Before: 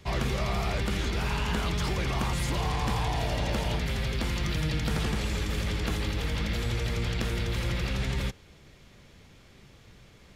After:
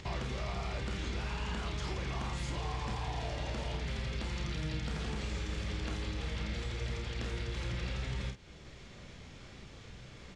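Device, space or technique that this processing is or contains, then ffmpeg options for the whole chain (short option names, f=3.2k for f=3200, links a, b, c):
upward and downward compression: -af "lowpass=f=8.2k:w=0.5412,lowpass=f=8.2k:w=1.3066,acompressor=mode=upward:threshold=-46dB:ratio=2.5,acompressor=threshold=-37dB:ratio=4,aecho=1:1:32|48:0.447|0.398"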